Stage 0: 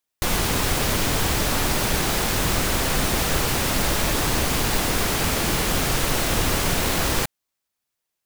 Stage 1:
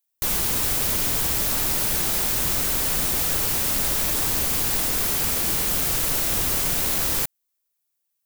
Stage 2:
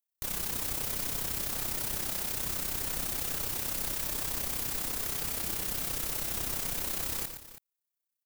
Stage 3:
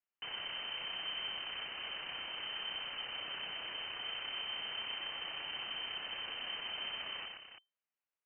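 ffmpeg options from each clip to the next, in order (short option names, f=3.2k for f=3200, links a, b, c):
-af "aemphasis=mode=production:type=50kf,volume=-7.5dB"
-filter_complex "[0:a]tremolo=f=32:d=0.667,asplit=2[a][b];[b]aecho=0:1:116|325:0.376|0.178[c];[a][c]amix=inputs=2:normalize=0,volume=-8.5dB"
-af "aeval=exprs='(tanh(70.8*val(0)+0.4)-tanh(0.4))/70.8':c=same,lowpass=f=2.6k:t=q:w=0.5098,lowpass=f=2.6k:t=q:w=0.6013,lowpass=f=2.6k:t=q:w=0.9,lowpass=f=2.6k:t=q:w=2.563,afreqshift=-3100,volume=4dB"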